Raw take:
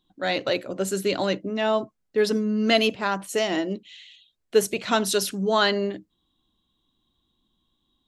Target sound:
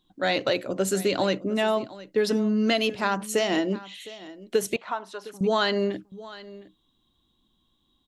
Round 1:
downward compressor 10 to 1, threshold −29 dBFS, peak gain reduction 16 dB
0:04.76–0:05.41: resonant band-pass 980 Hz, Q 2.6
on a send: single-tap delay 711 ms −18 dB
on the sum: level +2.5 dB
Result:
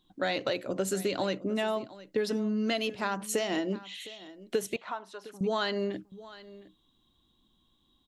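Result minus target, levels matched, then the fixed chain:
downward compressor: peak gain reduction +6.5 dB
downward compressor 10 to 1, threshold −21.5 dBFS, peak gain reduction 9.5 dB
0:04.76–0:05.41: resonant band-pass 980 Hz, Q 2.6
on a send: single-tap delay 711 ms −18 dB
on the sum: level +2.5 dB

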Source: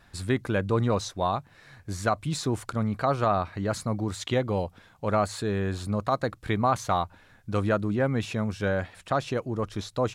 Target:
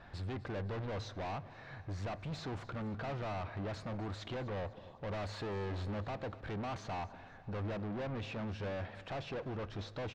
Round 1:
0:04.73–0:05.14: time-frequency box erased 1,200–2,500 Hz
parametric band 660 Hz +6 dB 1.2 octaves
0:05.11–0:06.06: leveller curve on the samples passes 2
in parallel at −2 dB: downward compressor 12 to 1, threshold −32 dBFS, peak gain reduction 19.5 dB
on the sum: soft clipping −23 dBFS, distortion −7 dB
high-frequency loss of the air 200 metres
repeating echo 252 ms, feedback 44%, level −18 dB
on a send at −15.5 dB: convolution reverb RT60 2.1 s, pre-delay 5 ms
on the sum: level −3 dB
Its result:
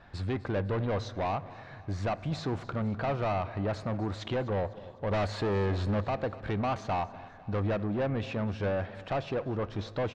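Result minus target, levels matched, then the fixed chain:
downward compressor: peak gain reduction −8.5 dB; soft clipping: distortion −5 dB
0:04.73–0:05.14: time-frequency box erased 1,200–2,500 Hz
parametric band 660 Hz +6 dB 1.2 octaves
0:05.11–0:06.06: leveller curve on the samples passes 2
in parallel at −2 dB: downward compressor 12 to 1, threshold −41.5 dBFS, peak gain reduction 28 dB
on the sum: soft clipping −34.5 dBFS, distortion −2 dB
high-frequency loss of the air 200 metres
repeating echo 252 ms, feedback 44%, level −18 dB
on a send at −15.5 dB: convolution reverb RT60 2.1 s, pre-delay 5 ms
on the sum: level −3 dB

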